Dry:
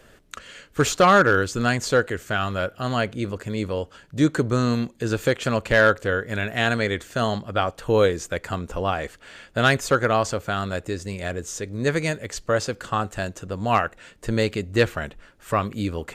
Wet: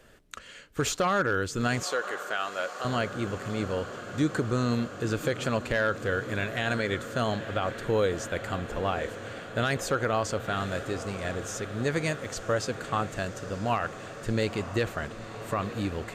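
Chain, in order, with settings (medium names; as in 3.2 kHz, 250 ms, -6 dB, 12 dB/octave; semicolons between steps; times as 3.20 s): on a send: echo that smears into a reverb 960 ms, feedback 78%, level -15 dB; on the sum: peak limiter -12 dBFS, peak gain reduction 7.5 dB; 1.83–2.85 s: high-pass 500 Hz 12 dB/octave; trim -4.5 dB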